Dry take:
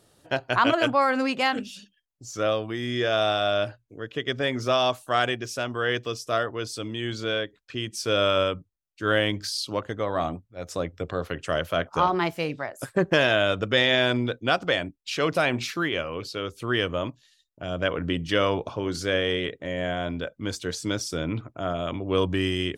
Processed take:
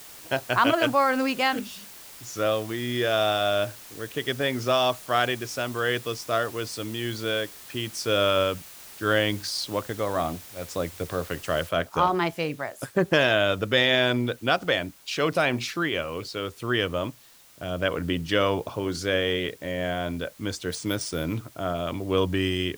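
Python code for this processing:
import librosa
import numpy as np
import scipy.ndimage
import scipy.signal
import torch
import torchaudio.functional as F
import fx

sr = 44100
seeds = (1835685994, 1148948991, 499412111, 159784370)

y = fx.noise_floor_step(x, sr, seeds[0], at_s=11.69, before_db=-45, after_db=-54, tilt_db=0.0)
y = fx.resample_bad(y, sr, factor=3, down='none', up='hold', at=(20.7, 21.39))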